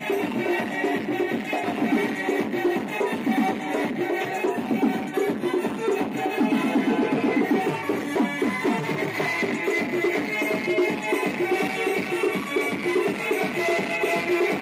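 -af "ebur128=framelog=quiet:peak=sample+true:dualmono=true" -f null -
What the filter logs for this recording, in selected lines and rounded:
Integrated loudness:
  I:         -21.3 LUFS
  Threshold: -31.3 LUFS
Loudness range:
  LRA:         1.3 LU
  Threshold: -41.3 LUFS
  LRA low:   -22.0 LUFS
  LRA high:  -20.7 LUFS
Sample peak:
  Peak:      -13.2 dBFS
True peak:
  Peak:      -13.1 dBFS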